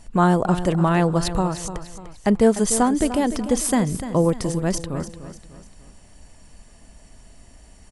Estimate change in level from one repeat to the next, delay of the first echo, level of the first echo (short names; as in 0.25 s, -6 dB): -7.5 dB, 0.297 s, -12.0 dB